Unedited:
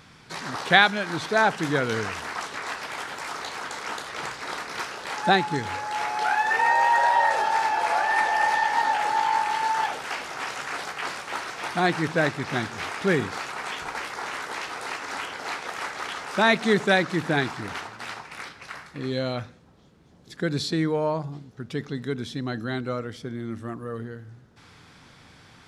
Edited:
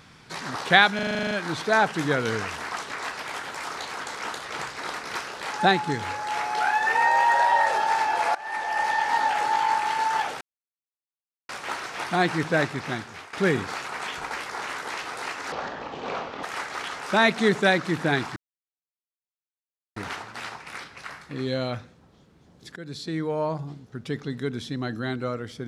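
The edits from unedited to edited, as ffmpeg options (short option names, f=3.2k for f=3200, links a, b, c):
-filter_complex "[0:a]asplit=18[a][b][c][d][e][f][g][h][i][j][k][l][m][n][o][p][q][r];[a]atrim=end=0.992[s];[b]atrim=start=0.948:end=0.992[t];[c]atrim=start=0.948:end=0.992[u];[d]atrim=start=0.948:end=0.992[v];[e]atrim=start=0.948:end=0.992[w];[f]atrim=start=0.948:end=0.992[x];[g]atrim=start=0.948:end=0.992[y];[h]atrim=start=0.948:end=0.992[z];[i]atrim=start=0.948:end=0.992[aa];[j]atrim=start=0.948:end=7.99,asetpts=PTS-STARTPTS,afade=t=out:st=7.038:d=0.004:c=hsin:silence=0.112202[ab];[k]atrim=start=7.99:end=10.05,asetpts=PTS-STARTPTS,afade=t=in:d=0.97:c=qsin:silence=0.112202,afade=t=out:st=2.056:d=0.004:c=hsin[ac];[l]atrim=start=10.05:end=11.13,asetpts=PTS-STARTPTS,volume=0[ad];[m]atrim=start=11.13:end=12.97,asetpts=PTS-STARTPTS,afade=t=in:d=0.004:c=hsin,afade=t=out:st=1.2:d=0.64:silence=0.16788[ae];[n]atrim=start=12.97:end=15.164,asetpts=PTS-STARTPTS,afade=t=in:d=0.004:c=hsin:silence=0.16788[af];[o]atrim=start=15.16:end=15.68,asetpts=PTS-STARTPTS,asetrate=25137,aresample=44100[ag];[p]atrim=start=15.676:end=17.61,asetpts=PTS-STARTPTS,afade=t=out:st=1.93:d=0.004:c=hsin,apad=pad_dur=1.6[ah];[q]atrim=start=17.61:end=20.41,asetpts=PTS-STARTPTS,afade=t=in:d=0.004:c=hsin,afade=t=out:st=2.796:d=0.004:c=hsin:silence=0.158489[ai];[r]atrim=start=20.41,asetpts=PTS-STARTPTS,afade=t=in:d=0.81:silence=0.158489[aj];[s][t]acrossfade=d=0.004:c1=hsin:c2=hsin[ak];[ak][u]acrossfade=d=0.004:c1=hsin:c2=hsin[al];[al][v]acrossfade=d=0.004:c1=hsin:c2=hsin[am];[am][w]acrossfade=d=0.004:c1=hsin:c2=hsin[an];[an][x]acrossfade=d=0.004:c1=hsin:c2=hsin[ao];[ao][y]acrossfade=d=0.004:c1=hsin:c2=hsin[ap];[ap][z]acrossfade=d=0.004:c1=hsin:c2=hsin[aq];[aq][aa]acrossfade=d=0.004:c1=hsin:c2=hsin[ar];[ab][ac][ad][ae][af]concat=n=5:v=0:a=1[as];[ar][as]acrossfade=d=0.004:c1=hsin:c2=hsin[at];[at][ag]acrossfade=d=0.004:c1=hsin:c2=hsin[au];[ah][ai][aj]concat=n=3:v=0:a=1[av];[au][av]acrossfade=d=0.004:c1=hsin:c2=hsin"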